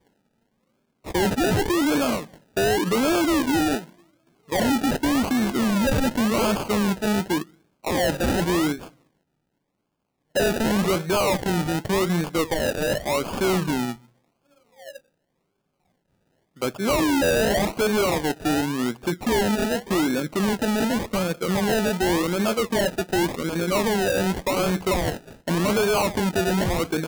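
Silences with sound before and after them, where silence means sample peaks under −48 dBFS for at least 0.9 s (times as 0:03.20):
0:08.91–0:10.35
0:14.98–0:16.56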